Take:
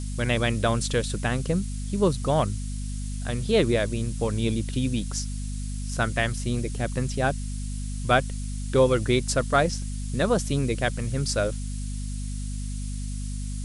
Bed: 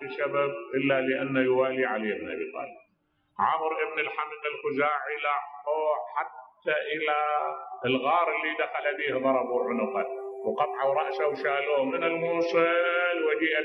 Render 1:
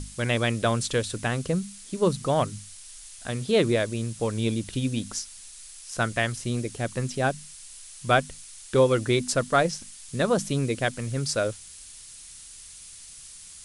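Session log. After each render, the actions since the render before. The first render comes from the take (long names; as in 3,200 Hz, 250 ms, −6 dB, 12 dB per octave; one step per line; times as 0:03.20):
mains-hum notches 50/100/150/200/250 Hz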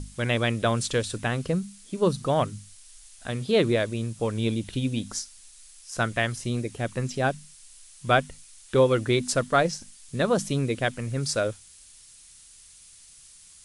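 noise reduction from a noise print 6 dB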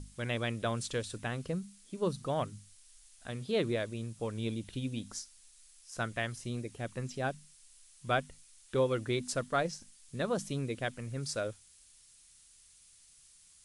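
level −9.5 dB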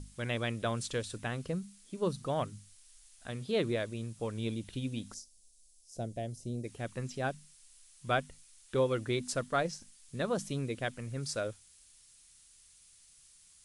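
0:05.14–0:06.64: drawn EQ curve 680 Hz 0 dB, 1,200 Hz −27 dB, 5,500 Hz −5 dB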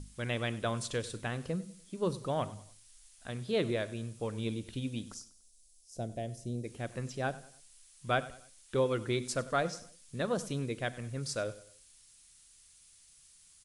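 repeating echo 97 ms, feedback 41%, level −19 dB
four-comb reverb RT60 0.49 s, combs from 33 ms, DRR 19 dB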